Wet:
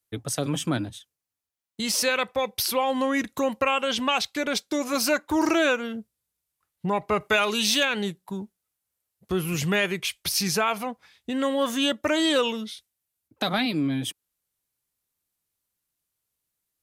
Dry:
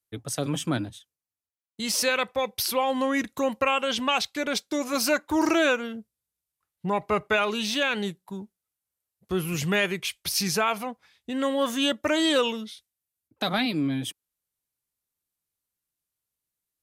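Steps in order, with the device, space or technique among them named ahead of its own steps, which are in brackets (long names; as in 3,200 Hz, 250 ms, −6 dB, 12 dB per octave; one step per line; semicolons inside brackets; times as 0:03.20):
parallel compression (in parallel at −0.5 dB: downward compressor, threshold −33 dBFS, peak gain reduction 13.5 dB)
0:07.20–0:07.85: on the sum: high-shelf EQ 3,900 Hz +10 dB
level −1.5 dB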